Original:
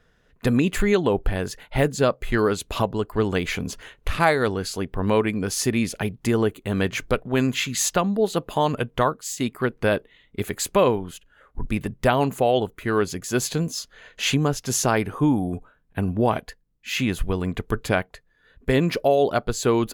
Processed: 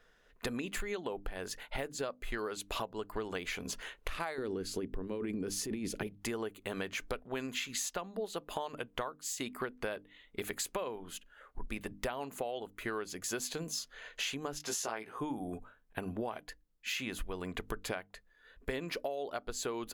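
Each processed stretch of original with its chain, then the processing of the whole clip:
4.38–6.07 s: resonant low shelf 510 Hz +10.5 dB, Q 1.5 + compressor with a negative ratio -15 dBFS
14.58–15.18 s: high-pass 330 Hz 6 dB/octave + peaking EQ 15 kHz -6 dB 1.2 oct + doubling 18 ms -2.5 dB
whole clip: peaking EQ 110 Hz -13 dB 2.3 oct; hum notches 50/100/150/200/250/300 Hz; compression 12:1, threshold -32 dBFS; trim -2 dB

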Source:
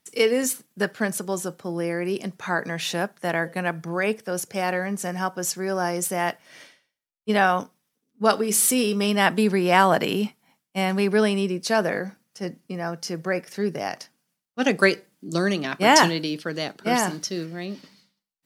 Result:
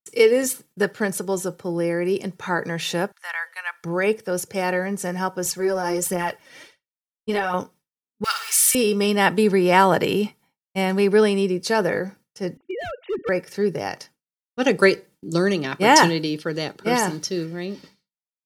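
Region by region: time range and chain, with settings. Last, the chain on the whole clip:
3.12–3.84 s: high-pass 1.1 kHz 24 dB/octave + treble shelf 4.6 kHz -5 dB
5.45–7.54 s: phaser 1.4 Hz, delay 4.3 ms, feedback 51% + compression, threshold -20 dBFS
8.24–8.75 s: jump at every zero crossing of -26 dBFS + high-pass 1.4 kHz 24 dB/octave + flutter echo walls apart 9.8 m, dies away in 0.49 s
12.57–13.29 s: formants replaced by sine waves + overload inside the chain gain 26.5 dB
whole clip: expander -45 dBFS; bass shelf 310 Hz +7 dB; comb 2.2 ms, depth 42%

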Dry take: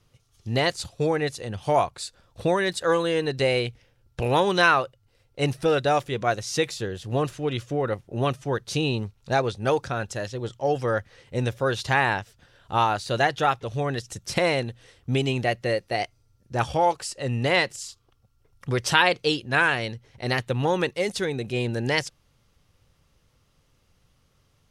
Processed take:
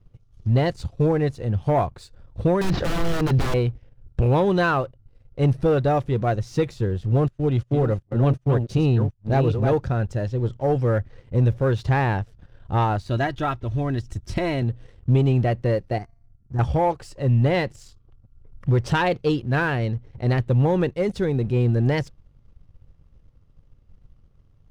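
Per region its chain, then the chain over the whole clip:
2.61–3.54 s: CVSD coder 32 kbps + integer overflow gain 21 dB + level flattener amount 100%
7.28–9.80 s: chunks repeated in reverse 373 ms, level -7 dB + gate -37 dBFS, range -20 dB
13.04–14.62 s: peaking EQ 510 Hz -6.5 dB 1.6 oct + comb 3.1 ms, depth 53%
15.98–16.59 s: peaking EQ 2.3 kHz -8 dB 0.81 oct + static phaser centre 1.4 kHz, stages 4 + feedback comb 230 Hz, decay 0.74 s, mix 40%
whole clip: tilt EQ -4 dB/octave; waveshaping leveller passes 1; trim -5 dB

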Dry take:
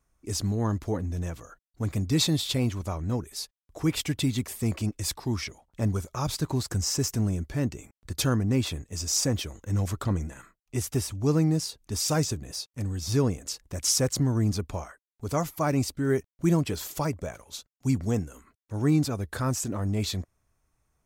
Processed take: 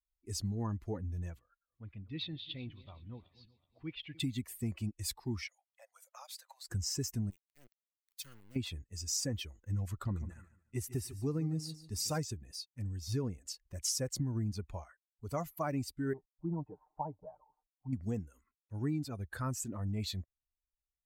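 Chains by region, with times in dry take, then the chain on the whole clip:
1.39–4.20 s: backward echo that repeats 188 ms, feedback 67%, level -13 dB + four-pole ladder low-pass 3.9 kHz, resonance 40%
5.47–6.68 s: treble shelf 3.5 kHz +6.5 dB + compression 2.5:1, threshold -32 dBFS + rippled Chebyshev high-pass 510 Hz, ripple 3 dB
7.30–8.56 s: amplifier tone stack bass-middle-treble 5-5-5 + small samples zeroed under -38 dBFS
10.00–12.18 s: band-stop 3.2 kHz, Q 16 + feedback delay 147 ms, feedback 39%, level -11 dB
16.13–17.93 s: companding laws mixed up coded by mu + four-pole ladder low-pass 950 Hz, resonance 70% + comb 6.6 ms, depth 95%
whole clip: expander on every frequency bin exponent 1.5; compression, threshold -27 dBFS; trim -4 dB

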